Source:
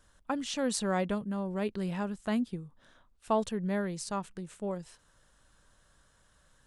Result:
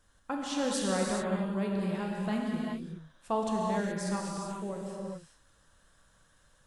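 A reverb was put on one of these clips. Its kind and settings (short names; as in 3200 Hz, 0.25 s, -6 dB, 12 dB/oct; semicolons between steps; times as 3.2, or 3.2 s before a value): non-linear reverb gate 0.45 s flat, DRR -2.5 dB; gain -3.5 dB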